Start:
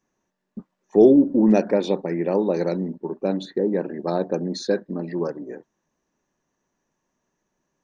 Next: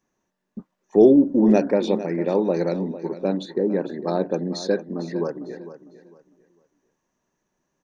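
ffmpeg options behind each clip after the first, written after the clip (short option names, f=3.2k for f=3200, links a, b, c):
-af "aecho=1:1:452|904|1356:0.2|0.0519|0.0135"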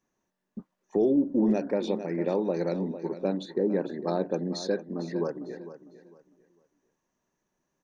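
-af "alimiter=limit=-11.5dB:level=0:latency=1:release=331,volume=-4dB"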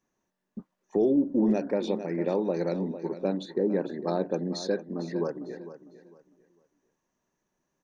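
-af anull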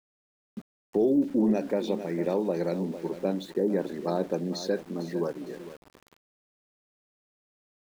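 -af "aeval=exprs='val(0)*gte(abs(val(0)),0.00501)':c=same"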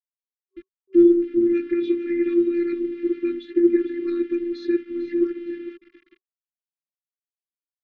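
-af "highpass=140,equalizer=f=160:t=q:w=4:g=-8,equalizer=f=290:t=q:w=4:g=-5,equalizer=f=430:t=q:w=4:g=10,equalizer=f=910:t=q:w=4:g=4,equalizer=f=1.3k:t=q:w=4:g=-9,equalizer=f=2.1k:t=q:w=4:g=5,lowpass=f=3.1k:w=0.5412,lowpass=f=3.1k:w=1.3066,afftfilt=real='hypot(re,im)*cos(PI*b)':imag='0':win_size=512:overlap=0.75,afftfilt=real='re*(1-between(b*sr/4096,380,1100))':imag='im*(1-between(b*sr/4096,380,1100))':win_size=4096:overlap=0.75,volume=8dB"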